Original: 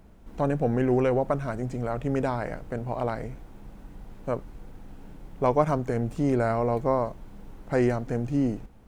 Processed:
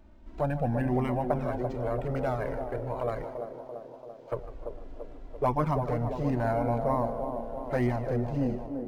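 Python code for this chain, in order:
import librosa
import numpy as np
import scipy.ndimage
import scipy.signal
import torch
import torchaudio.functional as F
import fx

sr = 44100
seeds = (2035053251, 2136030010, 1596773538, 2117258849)

p1 = fx.pre_emphasis(x, sr, coefficient=0.97, at=(3.24, 4.32))
p2 = fx.echo_feedback(p1, sr, ms=152, feedback_pct=51, wet_db=-13.5)
p3 = fx.env_flanger(p2, sr, rest_ms=3.4, full_db=-12.5)
p4 = p3 + fx.echo_wet_bandpass(p3, sr, ms=339, feedback_pct=62, hz=420.0, wet_db=-5, dry=0)
y = np.interp(np.arange(len(p4)), np.arange(len(p4))[::4], p4[::4])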